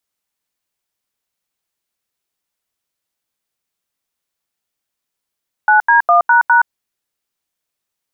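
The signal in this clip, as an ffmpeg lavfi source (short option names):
-f lavfi -i "aevalsrc='0.335*clip(min(mod(t,0.204),0.121-mod(t,0.204))/0.002,0,1)*(eq(floor(t/0.204),0)*(sin(2*PI*852*mod(t,0.204))+sin(2*PI*1477*mod(t,0.204)))+eq(floor(t/0.204),1)*(sin(2*PI*941*mod(t,0.204))+sin(2*PI*1633*mod(t,0.204)))+eq(floor(t/0.204),2)*(sin(2*PI*697*mod(t,0.204))+sin(2*PI*1209*mod(t,0.204)))+eq(floor(t/0.204),3)*(sin(2*PI*941*mod(t,0.204))+sin(2*PI*1477*mod(t,0.204)))+eq(floor(t/0.204),4)*(sin(2*PI*941*mod(t,0.204))+sin(2*PI*1477*mod(t,0.204))))':d=1.02:s=44100"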